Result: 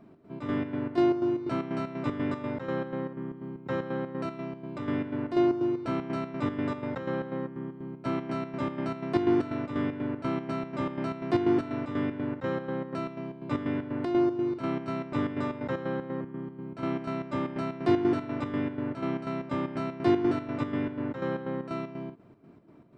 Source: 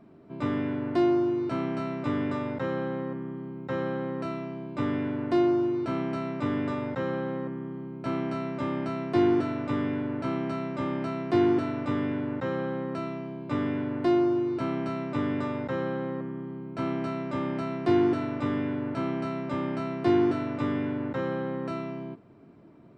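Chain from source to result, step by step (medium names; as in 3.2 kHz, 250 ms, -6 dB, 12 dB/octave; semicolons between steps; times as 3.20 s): square tremolo 4.1 Hz, depth 60%, duty 60%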